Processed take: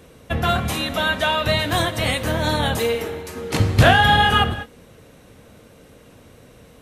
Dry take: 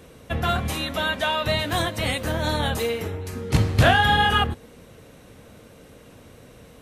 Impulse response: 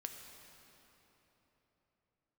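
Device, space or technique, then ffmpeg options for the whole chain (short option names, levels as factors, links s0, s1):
keyed gated reverb: -filter_complex "[0:a]asettb=1/sr,asplit=3[s0][s1][s2];[s0]atrim=end=2.954[s3];[s1]atrim=start=2.95:end=3.6,asetpts=PTS-STARTPTS,afade=t=in:d=0.004:c=qsin,afade=t=out:st=0.646:d=0.004:c=qsin,highpass=260[s4];[s2]atrim=start=3.596[s5];[s3][s4]acrossfade=d=0.004:c1=hsin:c2=qsin[s6];[s6][s5]acrossfade=d=0.004:c1=qsin:c2=hsin,asplit=3[s7][s8][s9];[1:a]atrim=start_sample=2205[s10];[s8][s10]afir=irnorm=-1:irlink=0[s11];[s9]apad=whole_len=300528[s12];[s11][s12]sidechaingate=range=0.0224:threshold=0.0141:ratio=16:detection=peak,volume=0.841[s13];[s7][s13]amix=inputs=2:normalize=0"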